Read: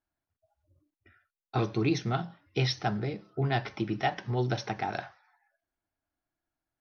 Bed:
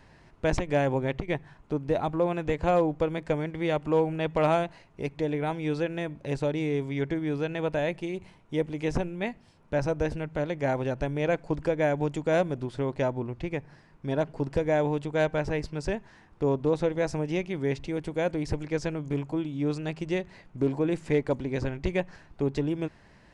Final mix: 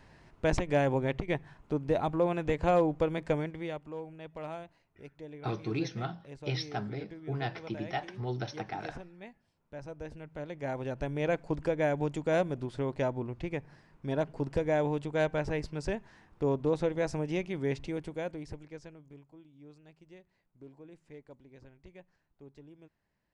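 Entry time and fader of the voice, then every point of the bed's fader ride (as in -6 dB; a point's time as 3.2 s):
3.90 s, -6.0 dB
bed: 3.39 s -2 dB
3.93 s -17 dB
9.77 s -17 dB
11.21 s -3.5 dB
17.88 s -3.5 dB
19.3 s -25 dB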